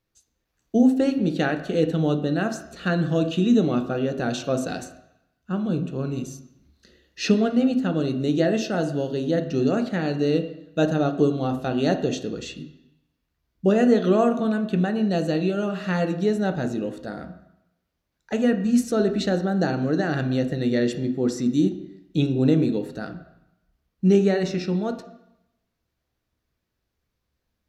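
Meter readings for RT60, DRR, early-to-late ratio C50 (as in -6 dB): 0.85 s, 6.0 dB, 10.5 dB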